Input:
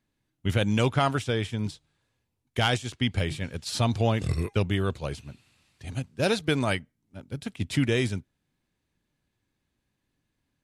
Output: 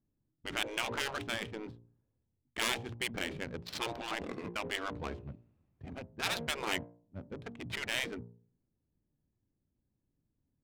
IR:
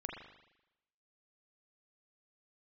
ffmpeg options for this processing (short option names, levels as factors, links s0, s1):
-af "bandreject=f=58.37:t=h:w=4,bandreject=f=116.74:t=h:w=4,bandreject=f=175.11:t=h:w=4,bandreject=f=233.48:t=h:w=4,bandreject=f=291.85:t=h:w=4,bandreject=f=350.22:t=h:w=4,bandreject=f=408.59:t=h:w=4,bandreject=f=466.96:t=h:w=4,bandreject=f=525.33:t=h:w=4,bandreject=f=583.7:t=h:w=4,bandreject=f=642.07:t=h:w=4,bandreject=f=700.44:t=h:w=4,bandreject=f=758.81:t=h:w=4,bandreject=f=817.18:t=h:w=4,bandreject=f=875.55:t=h:w=4,bandreject=f=933.92:t=h:w=4,bandreject=f=992.29:t=h:w=4,bandreject=f=1050.66:t=h:w=4,adynamicsmooth=sensitivity=5.5:basefreq=560,afftfilt=real='re*lt(hypot(re,im),0.126)':imag='im*lt(hypot(re,im),0.126)':win_size=1024:overlap=0.75,volume=0.891"